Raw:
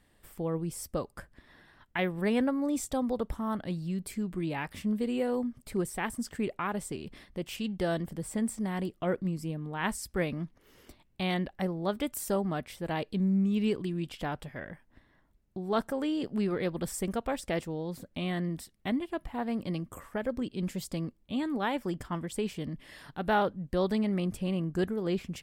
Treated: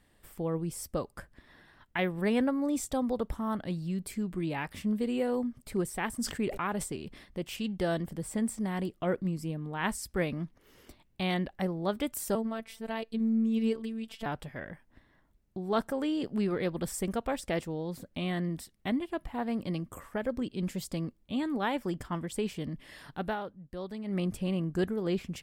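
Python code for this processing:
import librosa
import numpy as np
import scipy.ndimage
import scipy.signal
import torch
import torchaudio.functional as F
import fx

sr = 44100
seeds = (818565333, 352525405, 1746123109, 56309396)

y = fx.sustainer(x, sr, db_per_s=89.0, at=(6.14, 6.88))
y = fx.robotise(y, sr, hz=224.0, at=(12.35, 14.26))
y = fx.edit(y, sr, fx.fade_down_up(start_s=23.22, length_s=0.96, db=-11.0, fade_s=0.14), tone=tone)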